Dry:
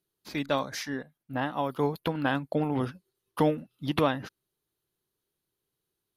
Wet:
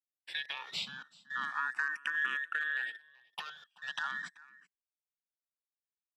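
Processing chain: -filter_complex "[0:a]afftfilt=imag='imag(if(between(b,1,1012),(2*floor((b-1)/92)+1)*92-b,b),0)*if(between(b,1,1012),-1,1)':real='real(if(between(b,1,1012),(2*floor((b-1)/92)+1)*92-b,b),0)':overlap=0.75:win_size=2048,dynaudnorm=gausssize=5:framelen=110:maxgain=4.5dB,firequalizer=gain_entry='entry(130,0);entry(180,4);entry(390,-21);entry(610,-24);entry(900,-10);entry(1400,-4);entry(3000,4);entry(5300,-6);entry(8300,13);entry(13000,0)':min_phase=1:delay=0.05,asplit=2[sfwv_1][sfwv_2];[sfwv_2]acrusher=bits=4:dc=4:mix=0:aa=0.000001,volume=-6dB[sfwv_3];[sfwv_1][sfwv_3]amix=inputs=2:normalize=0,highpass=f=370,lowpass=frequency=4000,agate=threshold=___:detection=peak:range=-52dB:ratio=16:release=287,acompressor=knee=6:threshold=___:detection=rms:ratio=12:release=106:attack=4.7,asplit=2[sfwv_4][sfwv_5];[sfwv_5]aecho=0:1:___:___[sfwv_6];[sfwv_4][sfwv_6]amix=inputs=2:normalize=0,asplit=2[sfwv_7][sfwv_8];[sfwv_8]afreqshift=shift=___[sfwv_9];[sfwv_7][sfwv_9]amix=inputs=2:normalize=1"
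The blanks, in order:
-46dB, -27dB, 382, 0.075, 0.37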